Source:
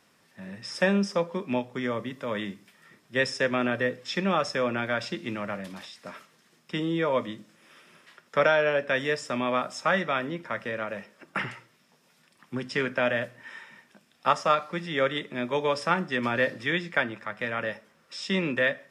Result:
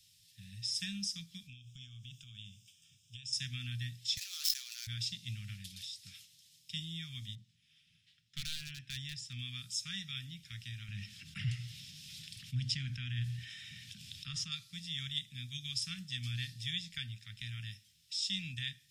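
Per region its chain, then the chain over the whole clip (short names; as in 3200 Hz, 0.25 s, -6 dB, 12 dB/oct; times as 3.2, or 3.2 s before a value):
1.47–3.33 compressor, threshold -36 dBFS + fixed phaser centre 2900 Hz, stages 8
4.17–4.87 median filter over 15 samples + HPF 1100 Hz 24 dB/oct + sustainer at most 28 dB/s
7.35–9.39 LPF 2500 Hz 6 dB/oct + hard clip -20 dBFS + mismatched tape noise reduction decoder only
10.88–14.52 LPF 1700 Hz 6 dB/oct + fast leveller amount 50%
whole clip: elliptic band-stop 110–3400 Hz, stop band 70 dB; dynamic EQ 2900 Hz, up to -5 dB, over -53 dBFS, Q 1; gain +4.5 dB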